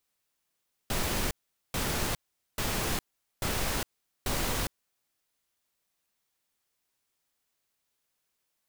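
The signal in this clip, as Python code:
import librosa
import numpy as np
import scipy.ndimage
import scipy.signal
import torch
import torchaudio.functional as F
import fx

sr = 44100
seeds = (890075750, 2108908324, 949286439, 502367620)

y = fx.noise_burst(sr, seeds[0], colour='pink', on_s=0.41, off_s=0.43, bursts=5, level_db=-30.0)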